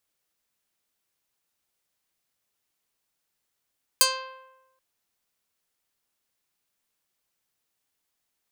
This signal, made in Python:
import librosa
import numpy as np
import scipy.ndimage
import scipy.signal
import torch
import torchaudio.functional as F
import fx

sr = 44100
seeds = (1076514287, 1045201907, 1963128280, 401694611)

y = fx.pluck(sr, length_s=0.78, note=72, decay_s=1.04, pick=0.27, brightness='medium')